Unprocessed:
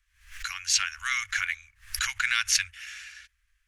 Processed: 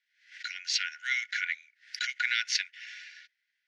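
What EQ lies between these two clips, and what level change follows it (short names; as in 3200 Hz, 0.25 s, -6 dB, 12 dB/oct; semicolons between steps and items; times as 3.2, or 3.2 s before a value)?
rippled Chebyshev high-pass 1400 Hz, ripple 9 dB; synth low-pass 3500 Hz, resonance Q 1.8; 0.0 dB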